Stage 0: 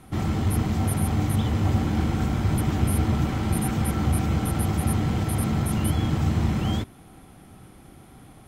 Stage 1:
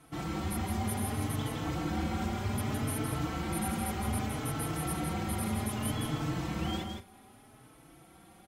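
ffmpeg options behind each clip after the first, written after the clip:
-filter_complex "[0:a]lowshelf=f=200:g=-10,aecho=1:1:164|202:0.531|0.133,asplit=2[s0][s1];[s1]adelay=4.1,afreqshift=0.64[s2];[s0][s2]amix=inputs=2:normalize=1,volume=0.75"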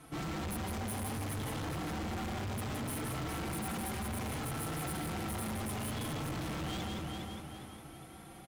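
-af "asoftclip=type=tanh:threshold=0.0211,aecho=1:1:408|816|1224|1632|2040:0.447|0.179|0.0715|0.0286|0.0114,asoftclip=type=hard:threshold=0.0106,volume=1.5"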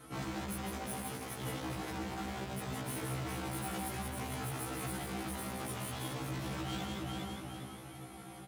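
-af "highpass=72,alimiter=level_in=2.99:limit=0.0631:level=0:latency=1,volume=0.335,afftfilt=real='re*1.73*eq(mod(b,3),0)':imag='im*1.73*eq(mod(b,3),0)':win_size=2048:overlap=0.75,volume=1.58"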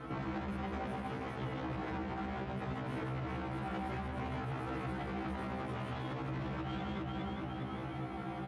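-af "lowpass=2200,alimiter=level_in=6.68:limit=0.0631:level=0:latency=1:release=205,volume=0.15,volume=2.99"

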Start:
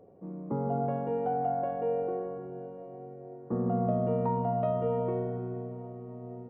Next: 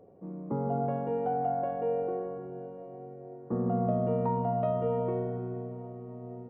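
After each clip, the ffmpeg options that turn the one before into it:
-af anull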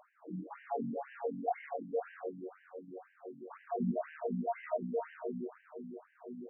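-af "aeval=exprs='val(0)+0.5*0.00841*sgn(val(0))':c=same,adynamicsmooth=sensitivity=2:basefreq=540,afftfilt=real='re*between(b*sr/1024,210*pow(2200/210,0.5+0.5*sin(2*PI*2*pts/sr))/1.41,210*pow(2200/210,0.5+0.5*sin(2*PI*2*pts/sr))*1.41)':imag='im*between(b*sr/1024,210*pow(2200/210,0.5+0.5*sin(2*PI*2*pts/sr))/1.41,210*pow(2200/210,0.5+0.5*sin(2*PI*2*pts/sr))*1.41)':win_size=1024:overlap=0.75"

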